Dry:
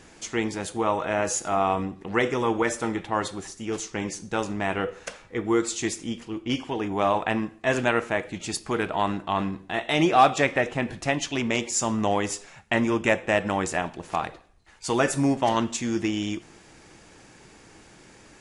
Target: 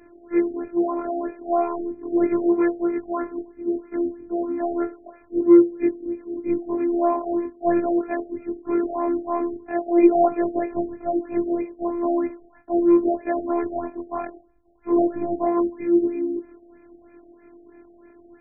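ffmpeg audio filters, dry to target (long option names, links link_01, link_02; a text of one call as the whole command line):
ffmpeg -i in.wav -af "afftfilt=real='re':imag='-im':win_size=2048:overlap=0.75,equalizer=frequency=280:width=0.56:gain=12.5,afftfilt=real='hypot(re,im)*cos(PI*b)':imag='0':win_size=512:overlap=0.75,afftfilt=real='re*lt(b*sr/1024,780*pow(2700/780,0.5+0.5*sin(2*PI*3.1*pts/sr)))':imag='im*lt(b*sr/1024,780*pow(2700/780,0.5+0.5*sin(2*PI*3.1*pts/sr)))':win_size=1024:overlap=0.75,volume=1.5dB" out.wav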